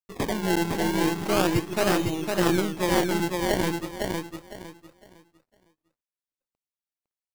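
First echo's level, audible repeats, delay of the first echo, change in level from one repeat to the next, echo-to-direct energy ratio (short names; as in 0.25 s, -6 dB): -3.5 dB, 3, 0.507 s, -11.5 dB, -3.0 dB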